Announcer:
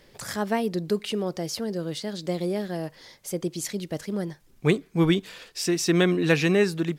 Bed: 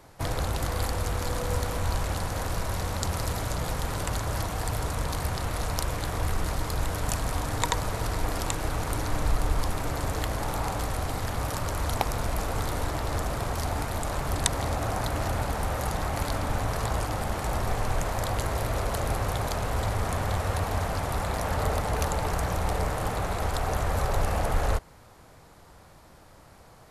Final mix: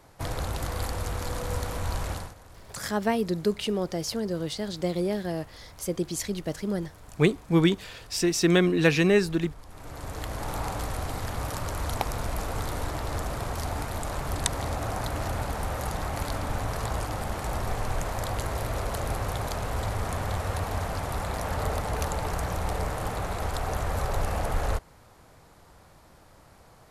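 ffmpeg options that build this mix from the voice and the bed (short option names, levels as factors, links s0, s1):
-filter_complex "[0:a]adelay=2550,volume=1[s0];[1:a]volume=5.96,afade=t=out:st=2.11:d=0.24:silence=0.133352,afade=t=in:st=9.67:d=0.89:silence=0.125893[s1];[s0][s1]amix=inputs=2:normalize=0"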